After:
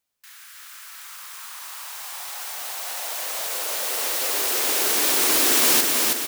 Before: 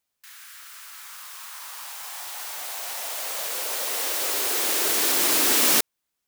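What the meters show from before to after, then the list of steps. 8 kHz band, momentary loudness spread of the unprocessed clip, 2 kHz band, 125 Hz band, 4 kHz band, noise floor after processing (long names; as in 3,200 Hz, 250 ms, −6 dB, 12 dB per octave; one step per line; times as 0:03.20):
+2.0 dB, 21 LU, +2.0 dB, can't be measured, +2.0 dB, −45 dBFS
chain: repeating echo 323 ms, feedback 55%, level −3 dB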